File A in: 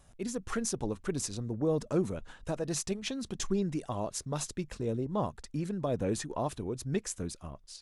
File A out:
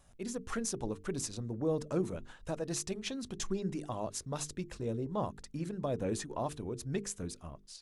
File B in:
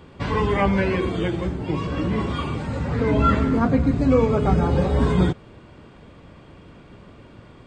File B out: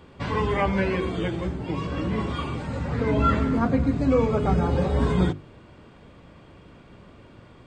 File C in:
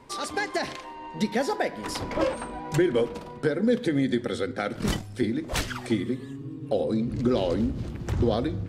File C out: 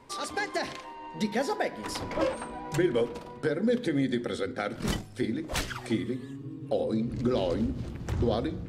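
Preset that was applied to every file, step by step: hum notches 50/100/150/200/250/300/350/400/450 Hz; trim -2.5 dB

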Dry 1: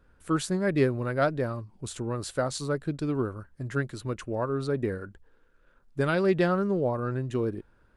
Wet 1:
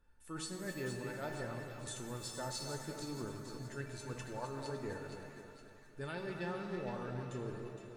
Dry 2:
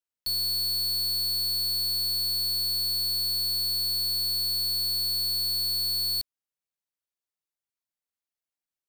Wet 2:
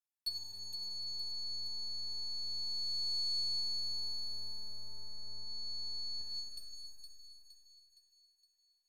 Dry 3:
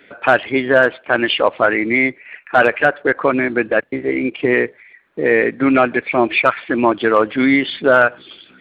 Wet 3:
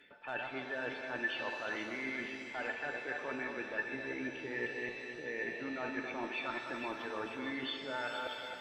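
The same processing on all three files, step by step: chunks repeated in reverse 188 ms, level -10 dB; treble shelf 4.1 kHz +7 dB; reverse; compression 6:1, threshold -26 dBFS; reverse; feedback comb 890 Hz, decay 0.18 s, harmonics all, mix 90%; low-pass that closes with the level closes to 1.2 kHz, closed at -31.5 dBFS; on a send: two-band feedback delay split 1.5 kHz, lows 265 ms, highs 465 ms, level -8 dB; on the sum: pitch-shifted reverb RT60 1.8 s, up +7 st, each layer -8 dB, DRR 6 dB; trim +4.5 dB

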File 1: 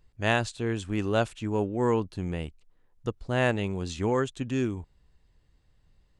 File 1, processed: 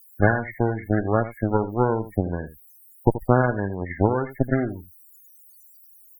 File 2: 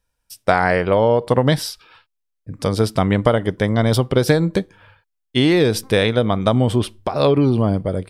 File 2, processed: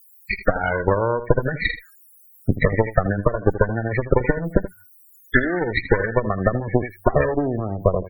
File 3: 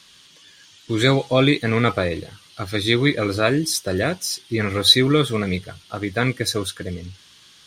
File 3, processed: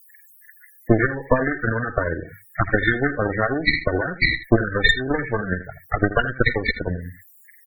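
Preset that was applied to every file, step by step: knee-point frequency compression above 1.4 kHz 4:1; gate -43 dBFS, range -26 dB; dynamic bell 740 Hz, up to -3 dB, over -30 dBFS, Q 1.7; compression 16:1, threshold -19 dBFS; transient shaper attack +11 dB, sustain -2 dB; added noise blue -40 dBFS; one-sided clip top -15.5 dBFS; Chebyshev shaper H 6 -45 dB, 7 -37 dB, 8 -13 dB, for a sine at 0 dBFS; on a send: delay 80 ms -13 dB; on the sum: loudest bins only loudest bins 32

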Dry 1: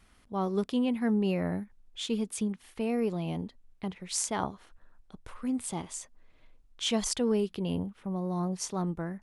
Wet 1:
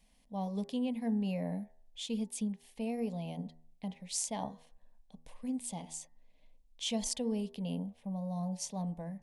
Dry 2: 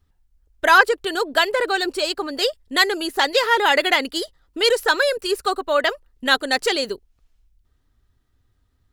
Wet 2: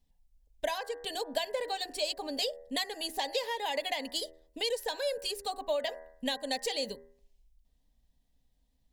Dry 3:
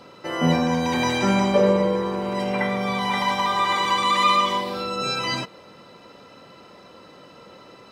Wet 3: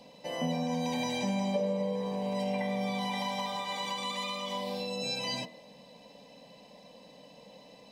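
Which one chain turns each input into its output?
de-hum 80.24 Hz, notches 25; compression 6:1, threshold -23 dBFS; static phaser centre 360 Hz, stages 6; trim -3.5 dB

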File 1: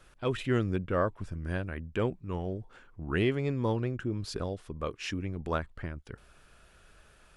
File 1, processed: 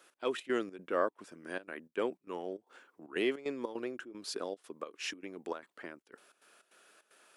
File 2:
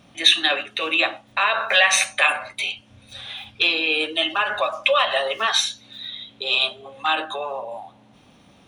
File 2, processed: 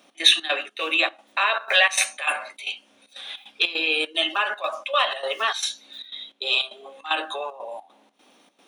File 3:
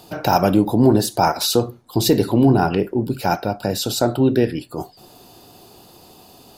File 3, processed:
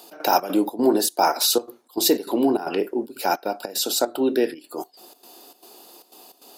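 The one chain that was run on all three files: high-pass 280 Hz 24 dB/octave; treble shelf 7.1 kHz +7 dB; trance gate "x.xx.xx.xxx.xxx" 152 bpm -12 dB; trim -2 dB

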